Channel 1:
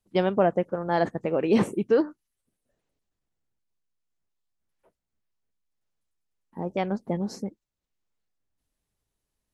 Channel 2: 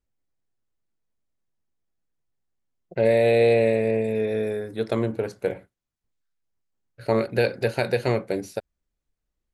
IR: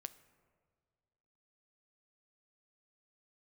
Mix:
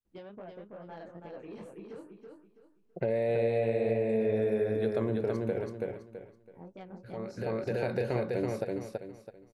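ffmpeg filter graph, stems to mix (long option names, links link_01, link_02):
-filter_complex "[0:a]acompressor=threshold=-26dB:ratio=5,flanger=delay=16:depth=8:speed=2.2,asoftclip=type=tanh:threshold=-24.5dB,volume=-12.5dB,asplit=3[link_01][link_02][link_03];[link_02]volume=-4.5dB[link_04];[1:a]highshelf=frequency=2600:gain=-11.5,alimiter=limit=-19.5dB:level=0:latency=1:release=166,adelay=50,volume=2dB,asplit=2[link_05][link_06];[link_06]volume=-4dB[link_07];[link_03]apad=whole_len=422520[link_08];[link_05][link_08]sidechaincompress=threshold=-55dB:ratio=8:attack=16:release=515[link_09];[link_04][link_07]amix=inputs=2:normalize=0,aecho=0:1:329|658|987|1316:1|0.29|0.0841|0.0244[link_10];[link_01][link_09][link_10]amix=inputs=3:normalize=0,acompressor=threshold=-28dB:ratio=2"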